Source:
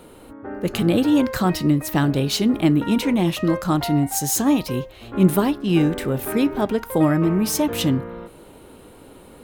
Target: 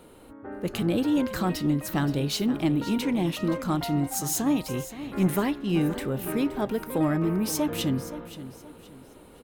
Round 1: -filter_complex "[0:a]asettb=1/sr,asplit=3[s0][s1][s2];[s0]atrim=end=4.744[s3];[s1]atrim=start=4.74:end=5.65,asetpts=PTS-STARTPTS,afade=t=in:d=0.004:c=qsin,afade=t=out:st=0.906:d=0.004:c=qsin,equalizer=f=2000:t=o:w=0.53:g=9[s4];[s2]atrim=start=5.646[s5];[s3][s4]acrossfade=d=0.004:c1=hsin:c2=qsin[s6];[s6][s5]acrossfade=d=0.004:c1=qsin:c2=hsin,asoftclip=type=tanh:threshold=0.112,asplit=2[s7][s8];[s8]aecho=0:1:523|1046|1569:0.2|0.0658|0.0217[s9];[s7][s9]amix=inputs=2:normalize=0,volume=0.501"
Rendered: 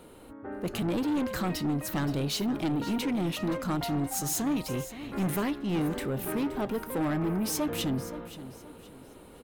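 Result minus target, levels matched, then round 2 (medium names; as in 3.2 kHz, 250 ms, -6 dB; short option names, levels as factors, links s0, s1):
saturation: distortion +13 dB
-filter_complex "[0:a]asettb=1/sr,asplit=3[s0][s1][s2];[s0]atrim=end=4.744[s3];[s1]atrim=start=4.74:end=5.65,asetpts=PTS-STARTPTS,afade=t=in:d=0.004:c=qsin,afade=t=out:st=0.906:d=0.004:c=qsin,equalizer=f=2000:t=o:w=0.53:g=9[s4];[s2]atrim=start=5.646[s5];[s3][s4]acrossfade=d=0.004:c1=hsin:c2=qsin[s6];[s6][s5]acrossfade=d=0.004:c1=qsin:c2=hsin,asoftclip=type=tanh:threshold=0.398,asplit=2[s7][s8];[s8]aecho=0:1:523|1046|1569:0.2|0.0658|0.0217[s9];[s7][s9]amix=inputs=2:normalize=0,volume=0.501"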